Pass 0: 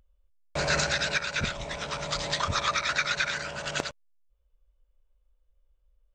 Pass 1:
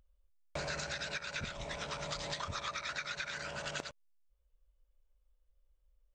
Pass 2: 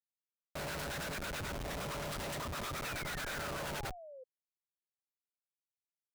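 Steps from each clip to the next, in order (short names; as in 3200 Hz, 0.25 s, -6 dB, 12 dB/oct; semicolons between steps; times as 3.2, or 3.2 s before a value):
compressor, threshold -32 dBFS, peak gain reduction 10.5 dB; gain -4.5 dB
self-modulated delay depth 0.14 ms; Schmitt trigger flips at -44.5 dBFS; painted sound fall, 2.84–4.24, 500–2700 Hz -55 dBFS; gain +4.5 dB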